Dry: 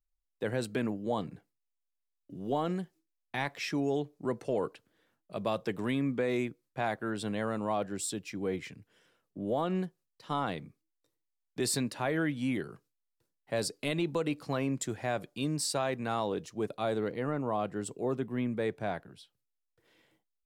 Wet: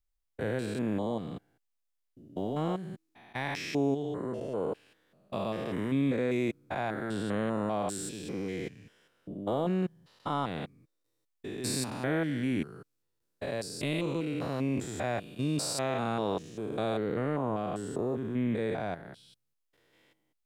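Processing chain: spectrogram pixelated in time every 200 ms; trim +3.5 dB

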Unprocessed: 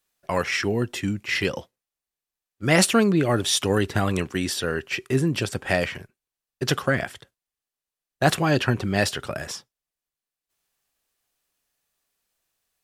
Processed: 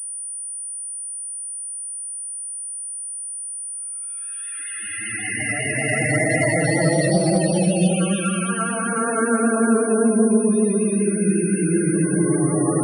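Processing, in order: phase dispersion lows, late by 110 ms, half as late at 860 Hz; Paulstretch 12×, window 0.25 s, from 2.25 s; loudest bins only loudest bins 32; vibrato 5.2 Hz 37 cents; class-D stage that switches slowly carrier 9.4 kHz

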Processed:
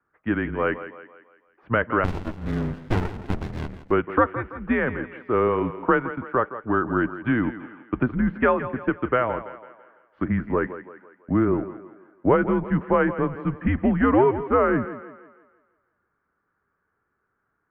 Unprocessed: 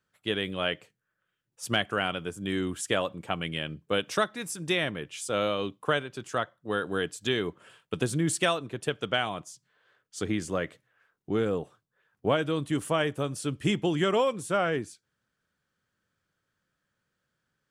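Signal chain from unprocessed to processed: mistuned SSB -120 Hz 220–2000 Hz; thinning echo 166 ms, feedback 47%, high-pass 200 Hz, level -12.5 dB; 2.04–3.91 s: sliding maximum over 65 samples; trim +7.5 dB

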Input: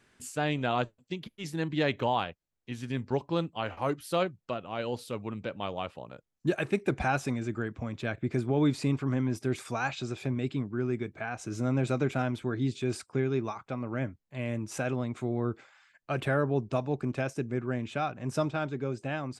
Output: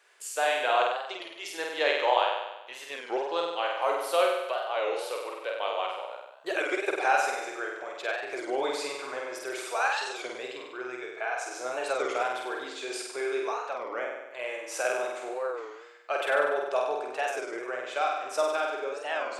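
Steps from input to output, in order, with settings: inverse Chebyshev high-pass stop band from 230 Hz, stop band 40 dB; flutter echo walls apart 8.3 m, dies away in 1 s; warped record 33 1/3 rpm, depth 160 cents; trim +3 dB

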